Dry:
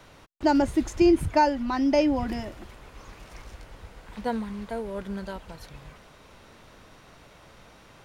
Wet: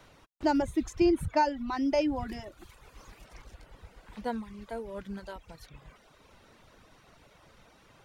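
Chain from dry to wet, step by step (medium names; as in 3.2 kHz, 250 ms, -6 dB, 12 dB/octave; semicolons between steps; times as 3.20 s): 2.58–3.24 s: treble shelf 4.7 kHz -> 8 kHz +7 dB; reverb removal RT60 0.82 s; trim -4.5 dB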